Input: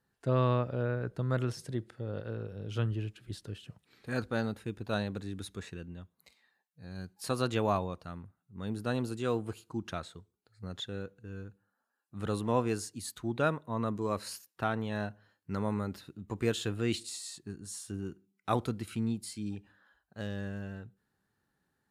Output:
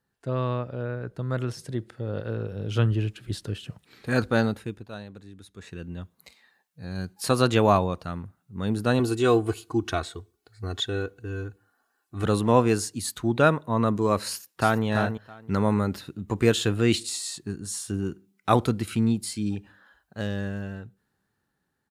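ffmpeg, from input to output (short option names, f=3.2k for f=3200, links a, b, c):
-filter_complex "[0:a]asettb=1/sr,asplit=3[a][b][c];[a]atrim=end=8.994[d];[b]atrim=start=8.99:end=12.24,asetpts=PTS-STARTPTS,afade=t=in:d=0.004:c=qsin,afade=t=out:st=3.246:d=0.004:c=qsin,aecho=1:1:2.7:0.7,atrim=end_sample=143325[e];[c]atrim=start=12.236[f];[d][e]acrossfade=d=0.004:c1=hsin:c2=qsin[g];[g][f]acrossfade=d=0.004:c1=qsin:c2=hsin,asplit=2[h][i];[i]afade=t=in:st=14.28:d=0.01,afade=t=out:st=14.84:d=0.01,aecho=0:1:330|660:0.421697|0.0632545[j];[h][j]amix=inputs=2:normalize=0,asplit=3[k][l][m];[k]atrim=end=4.89,asetpts=PTS-STARTPTS,afade=t=out:st=4.41:d=0.48:silence=0.149624[n];[l]atrim=start=4.89:end=5.54,asetpts=PTS-STARTPTS,volume=-16.5dB[o];[m]atrim=start=5.54,asetpts=PTS-STARTPTS,afade=t=in:d=0.48:silence=0.149624[p];[n][o][p]concat=n=3:v=0:a=1,dynaudnorm=f=130:g=31:m=10dB"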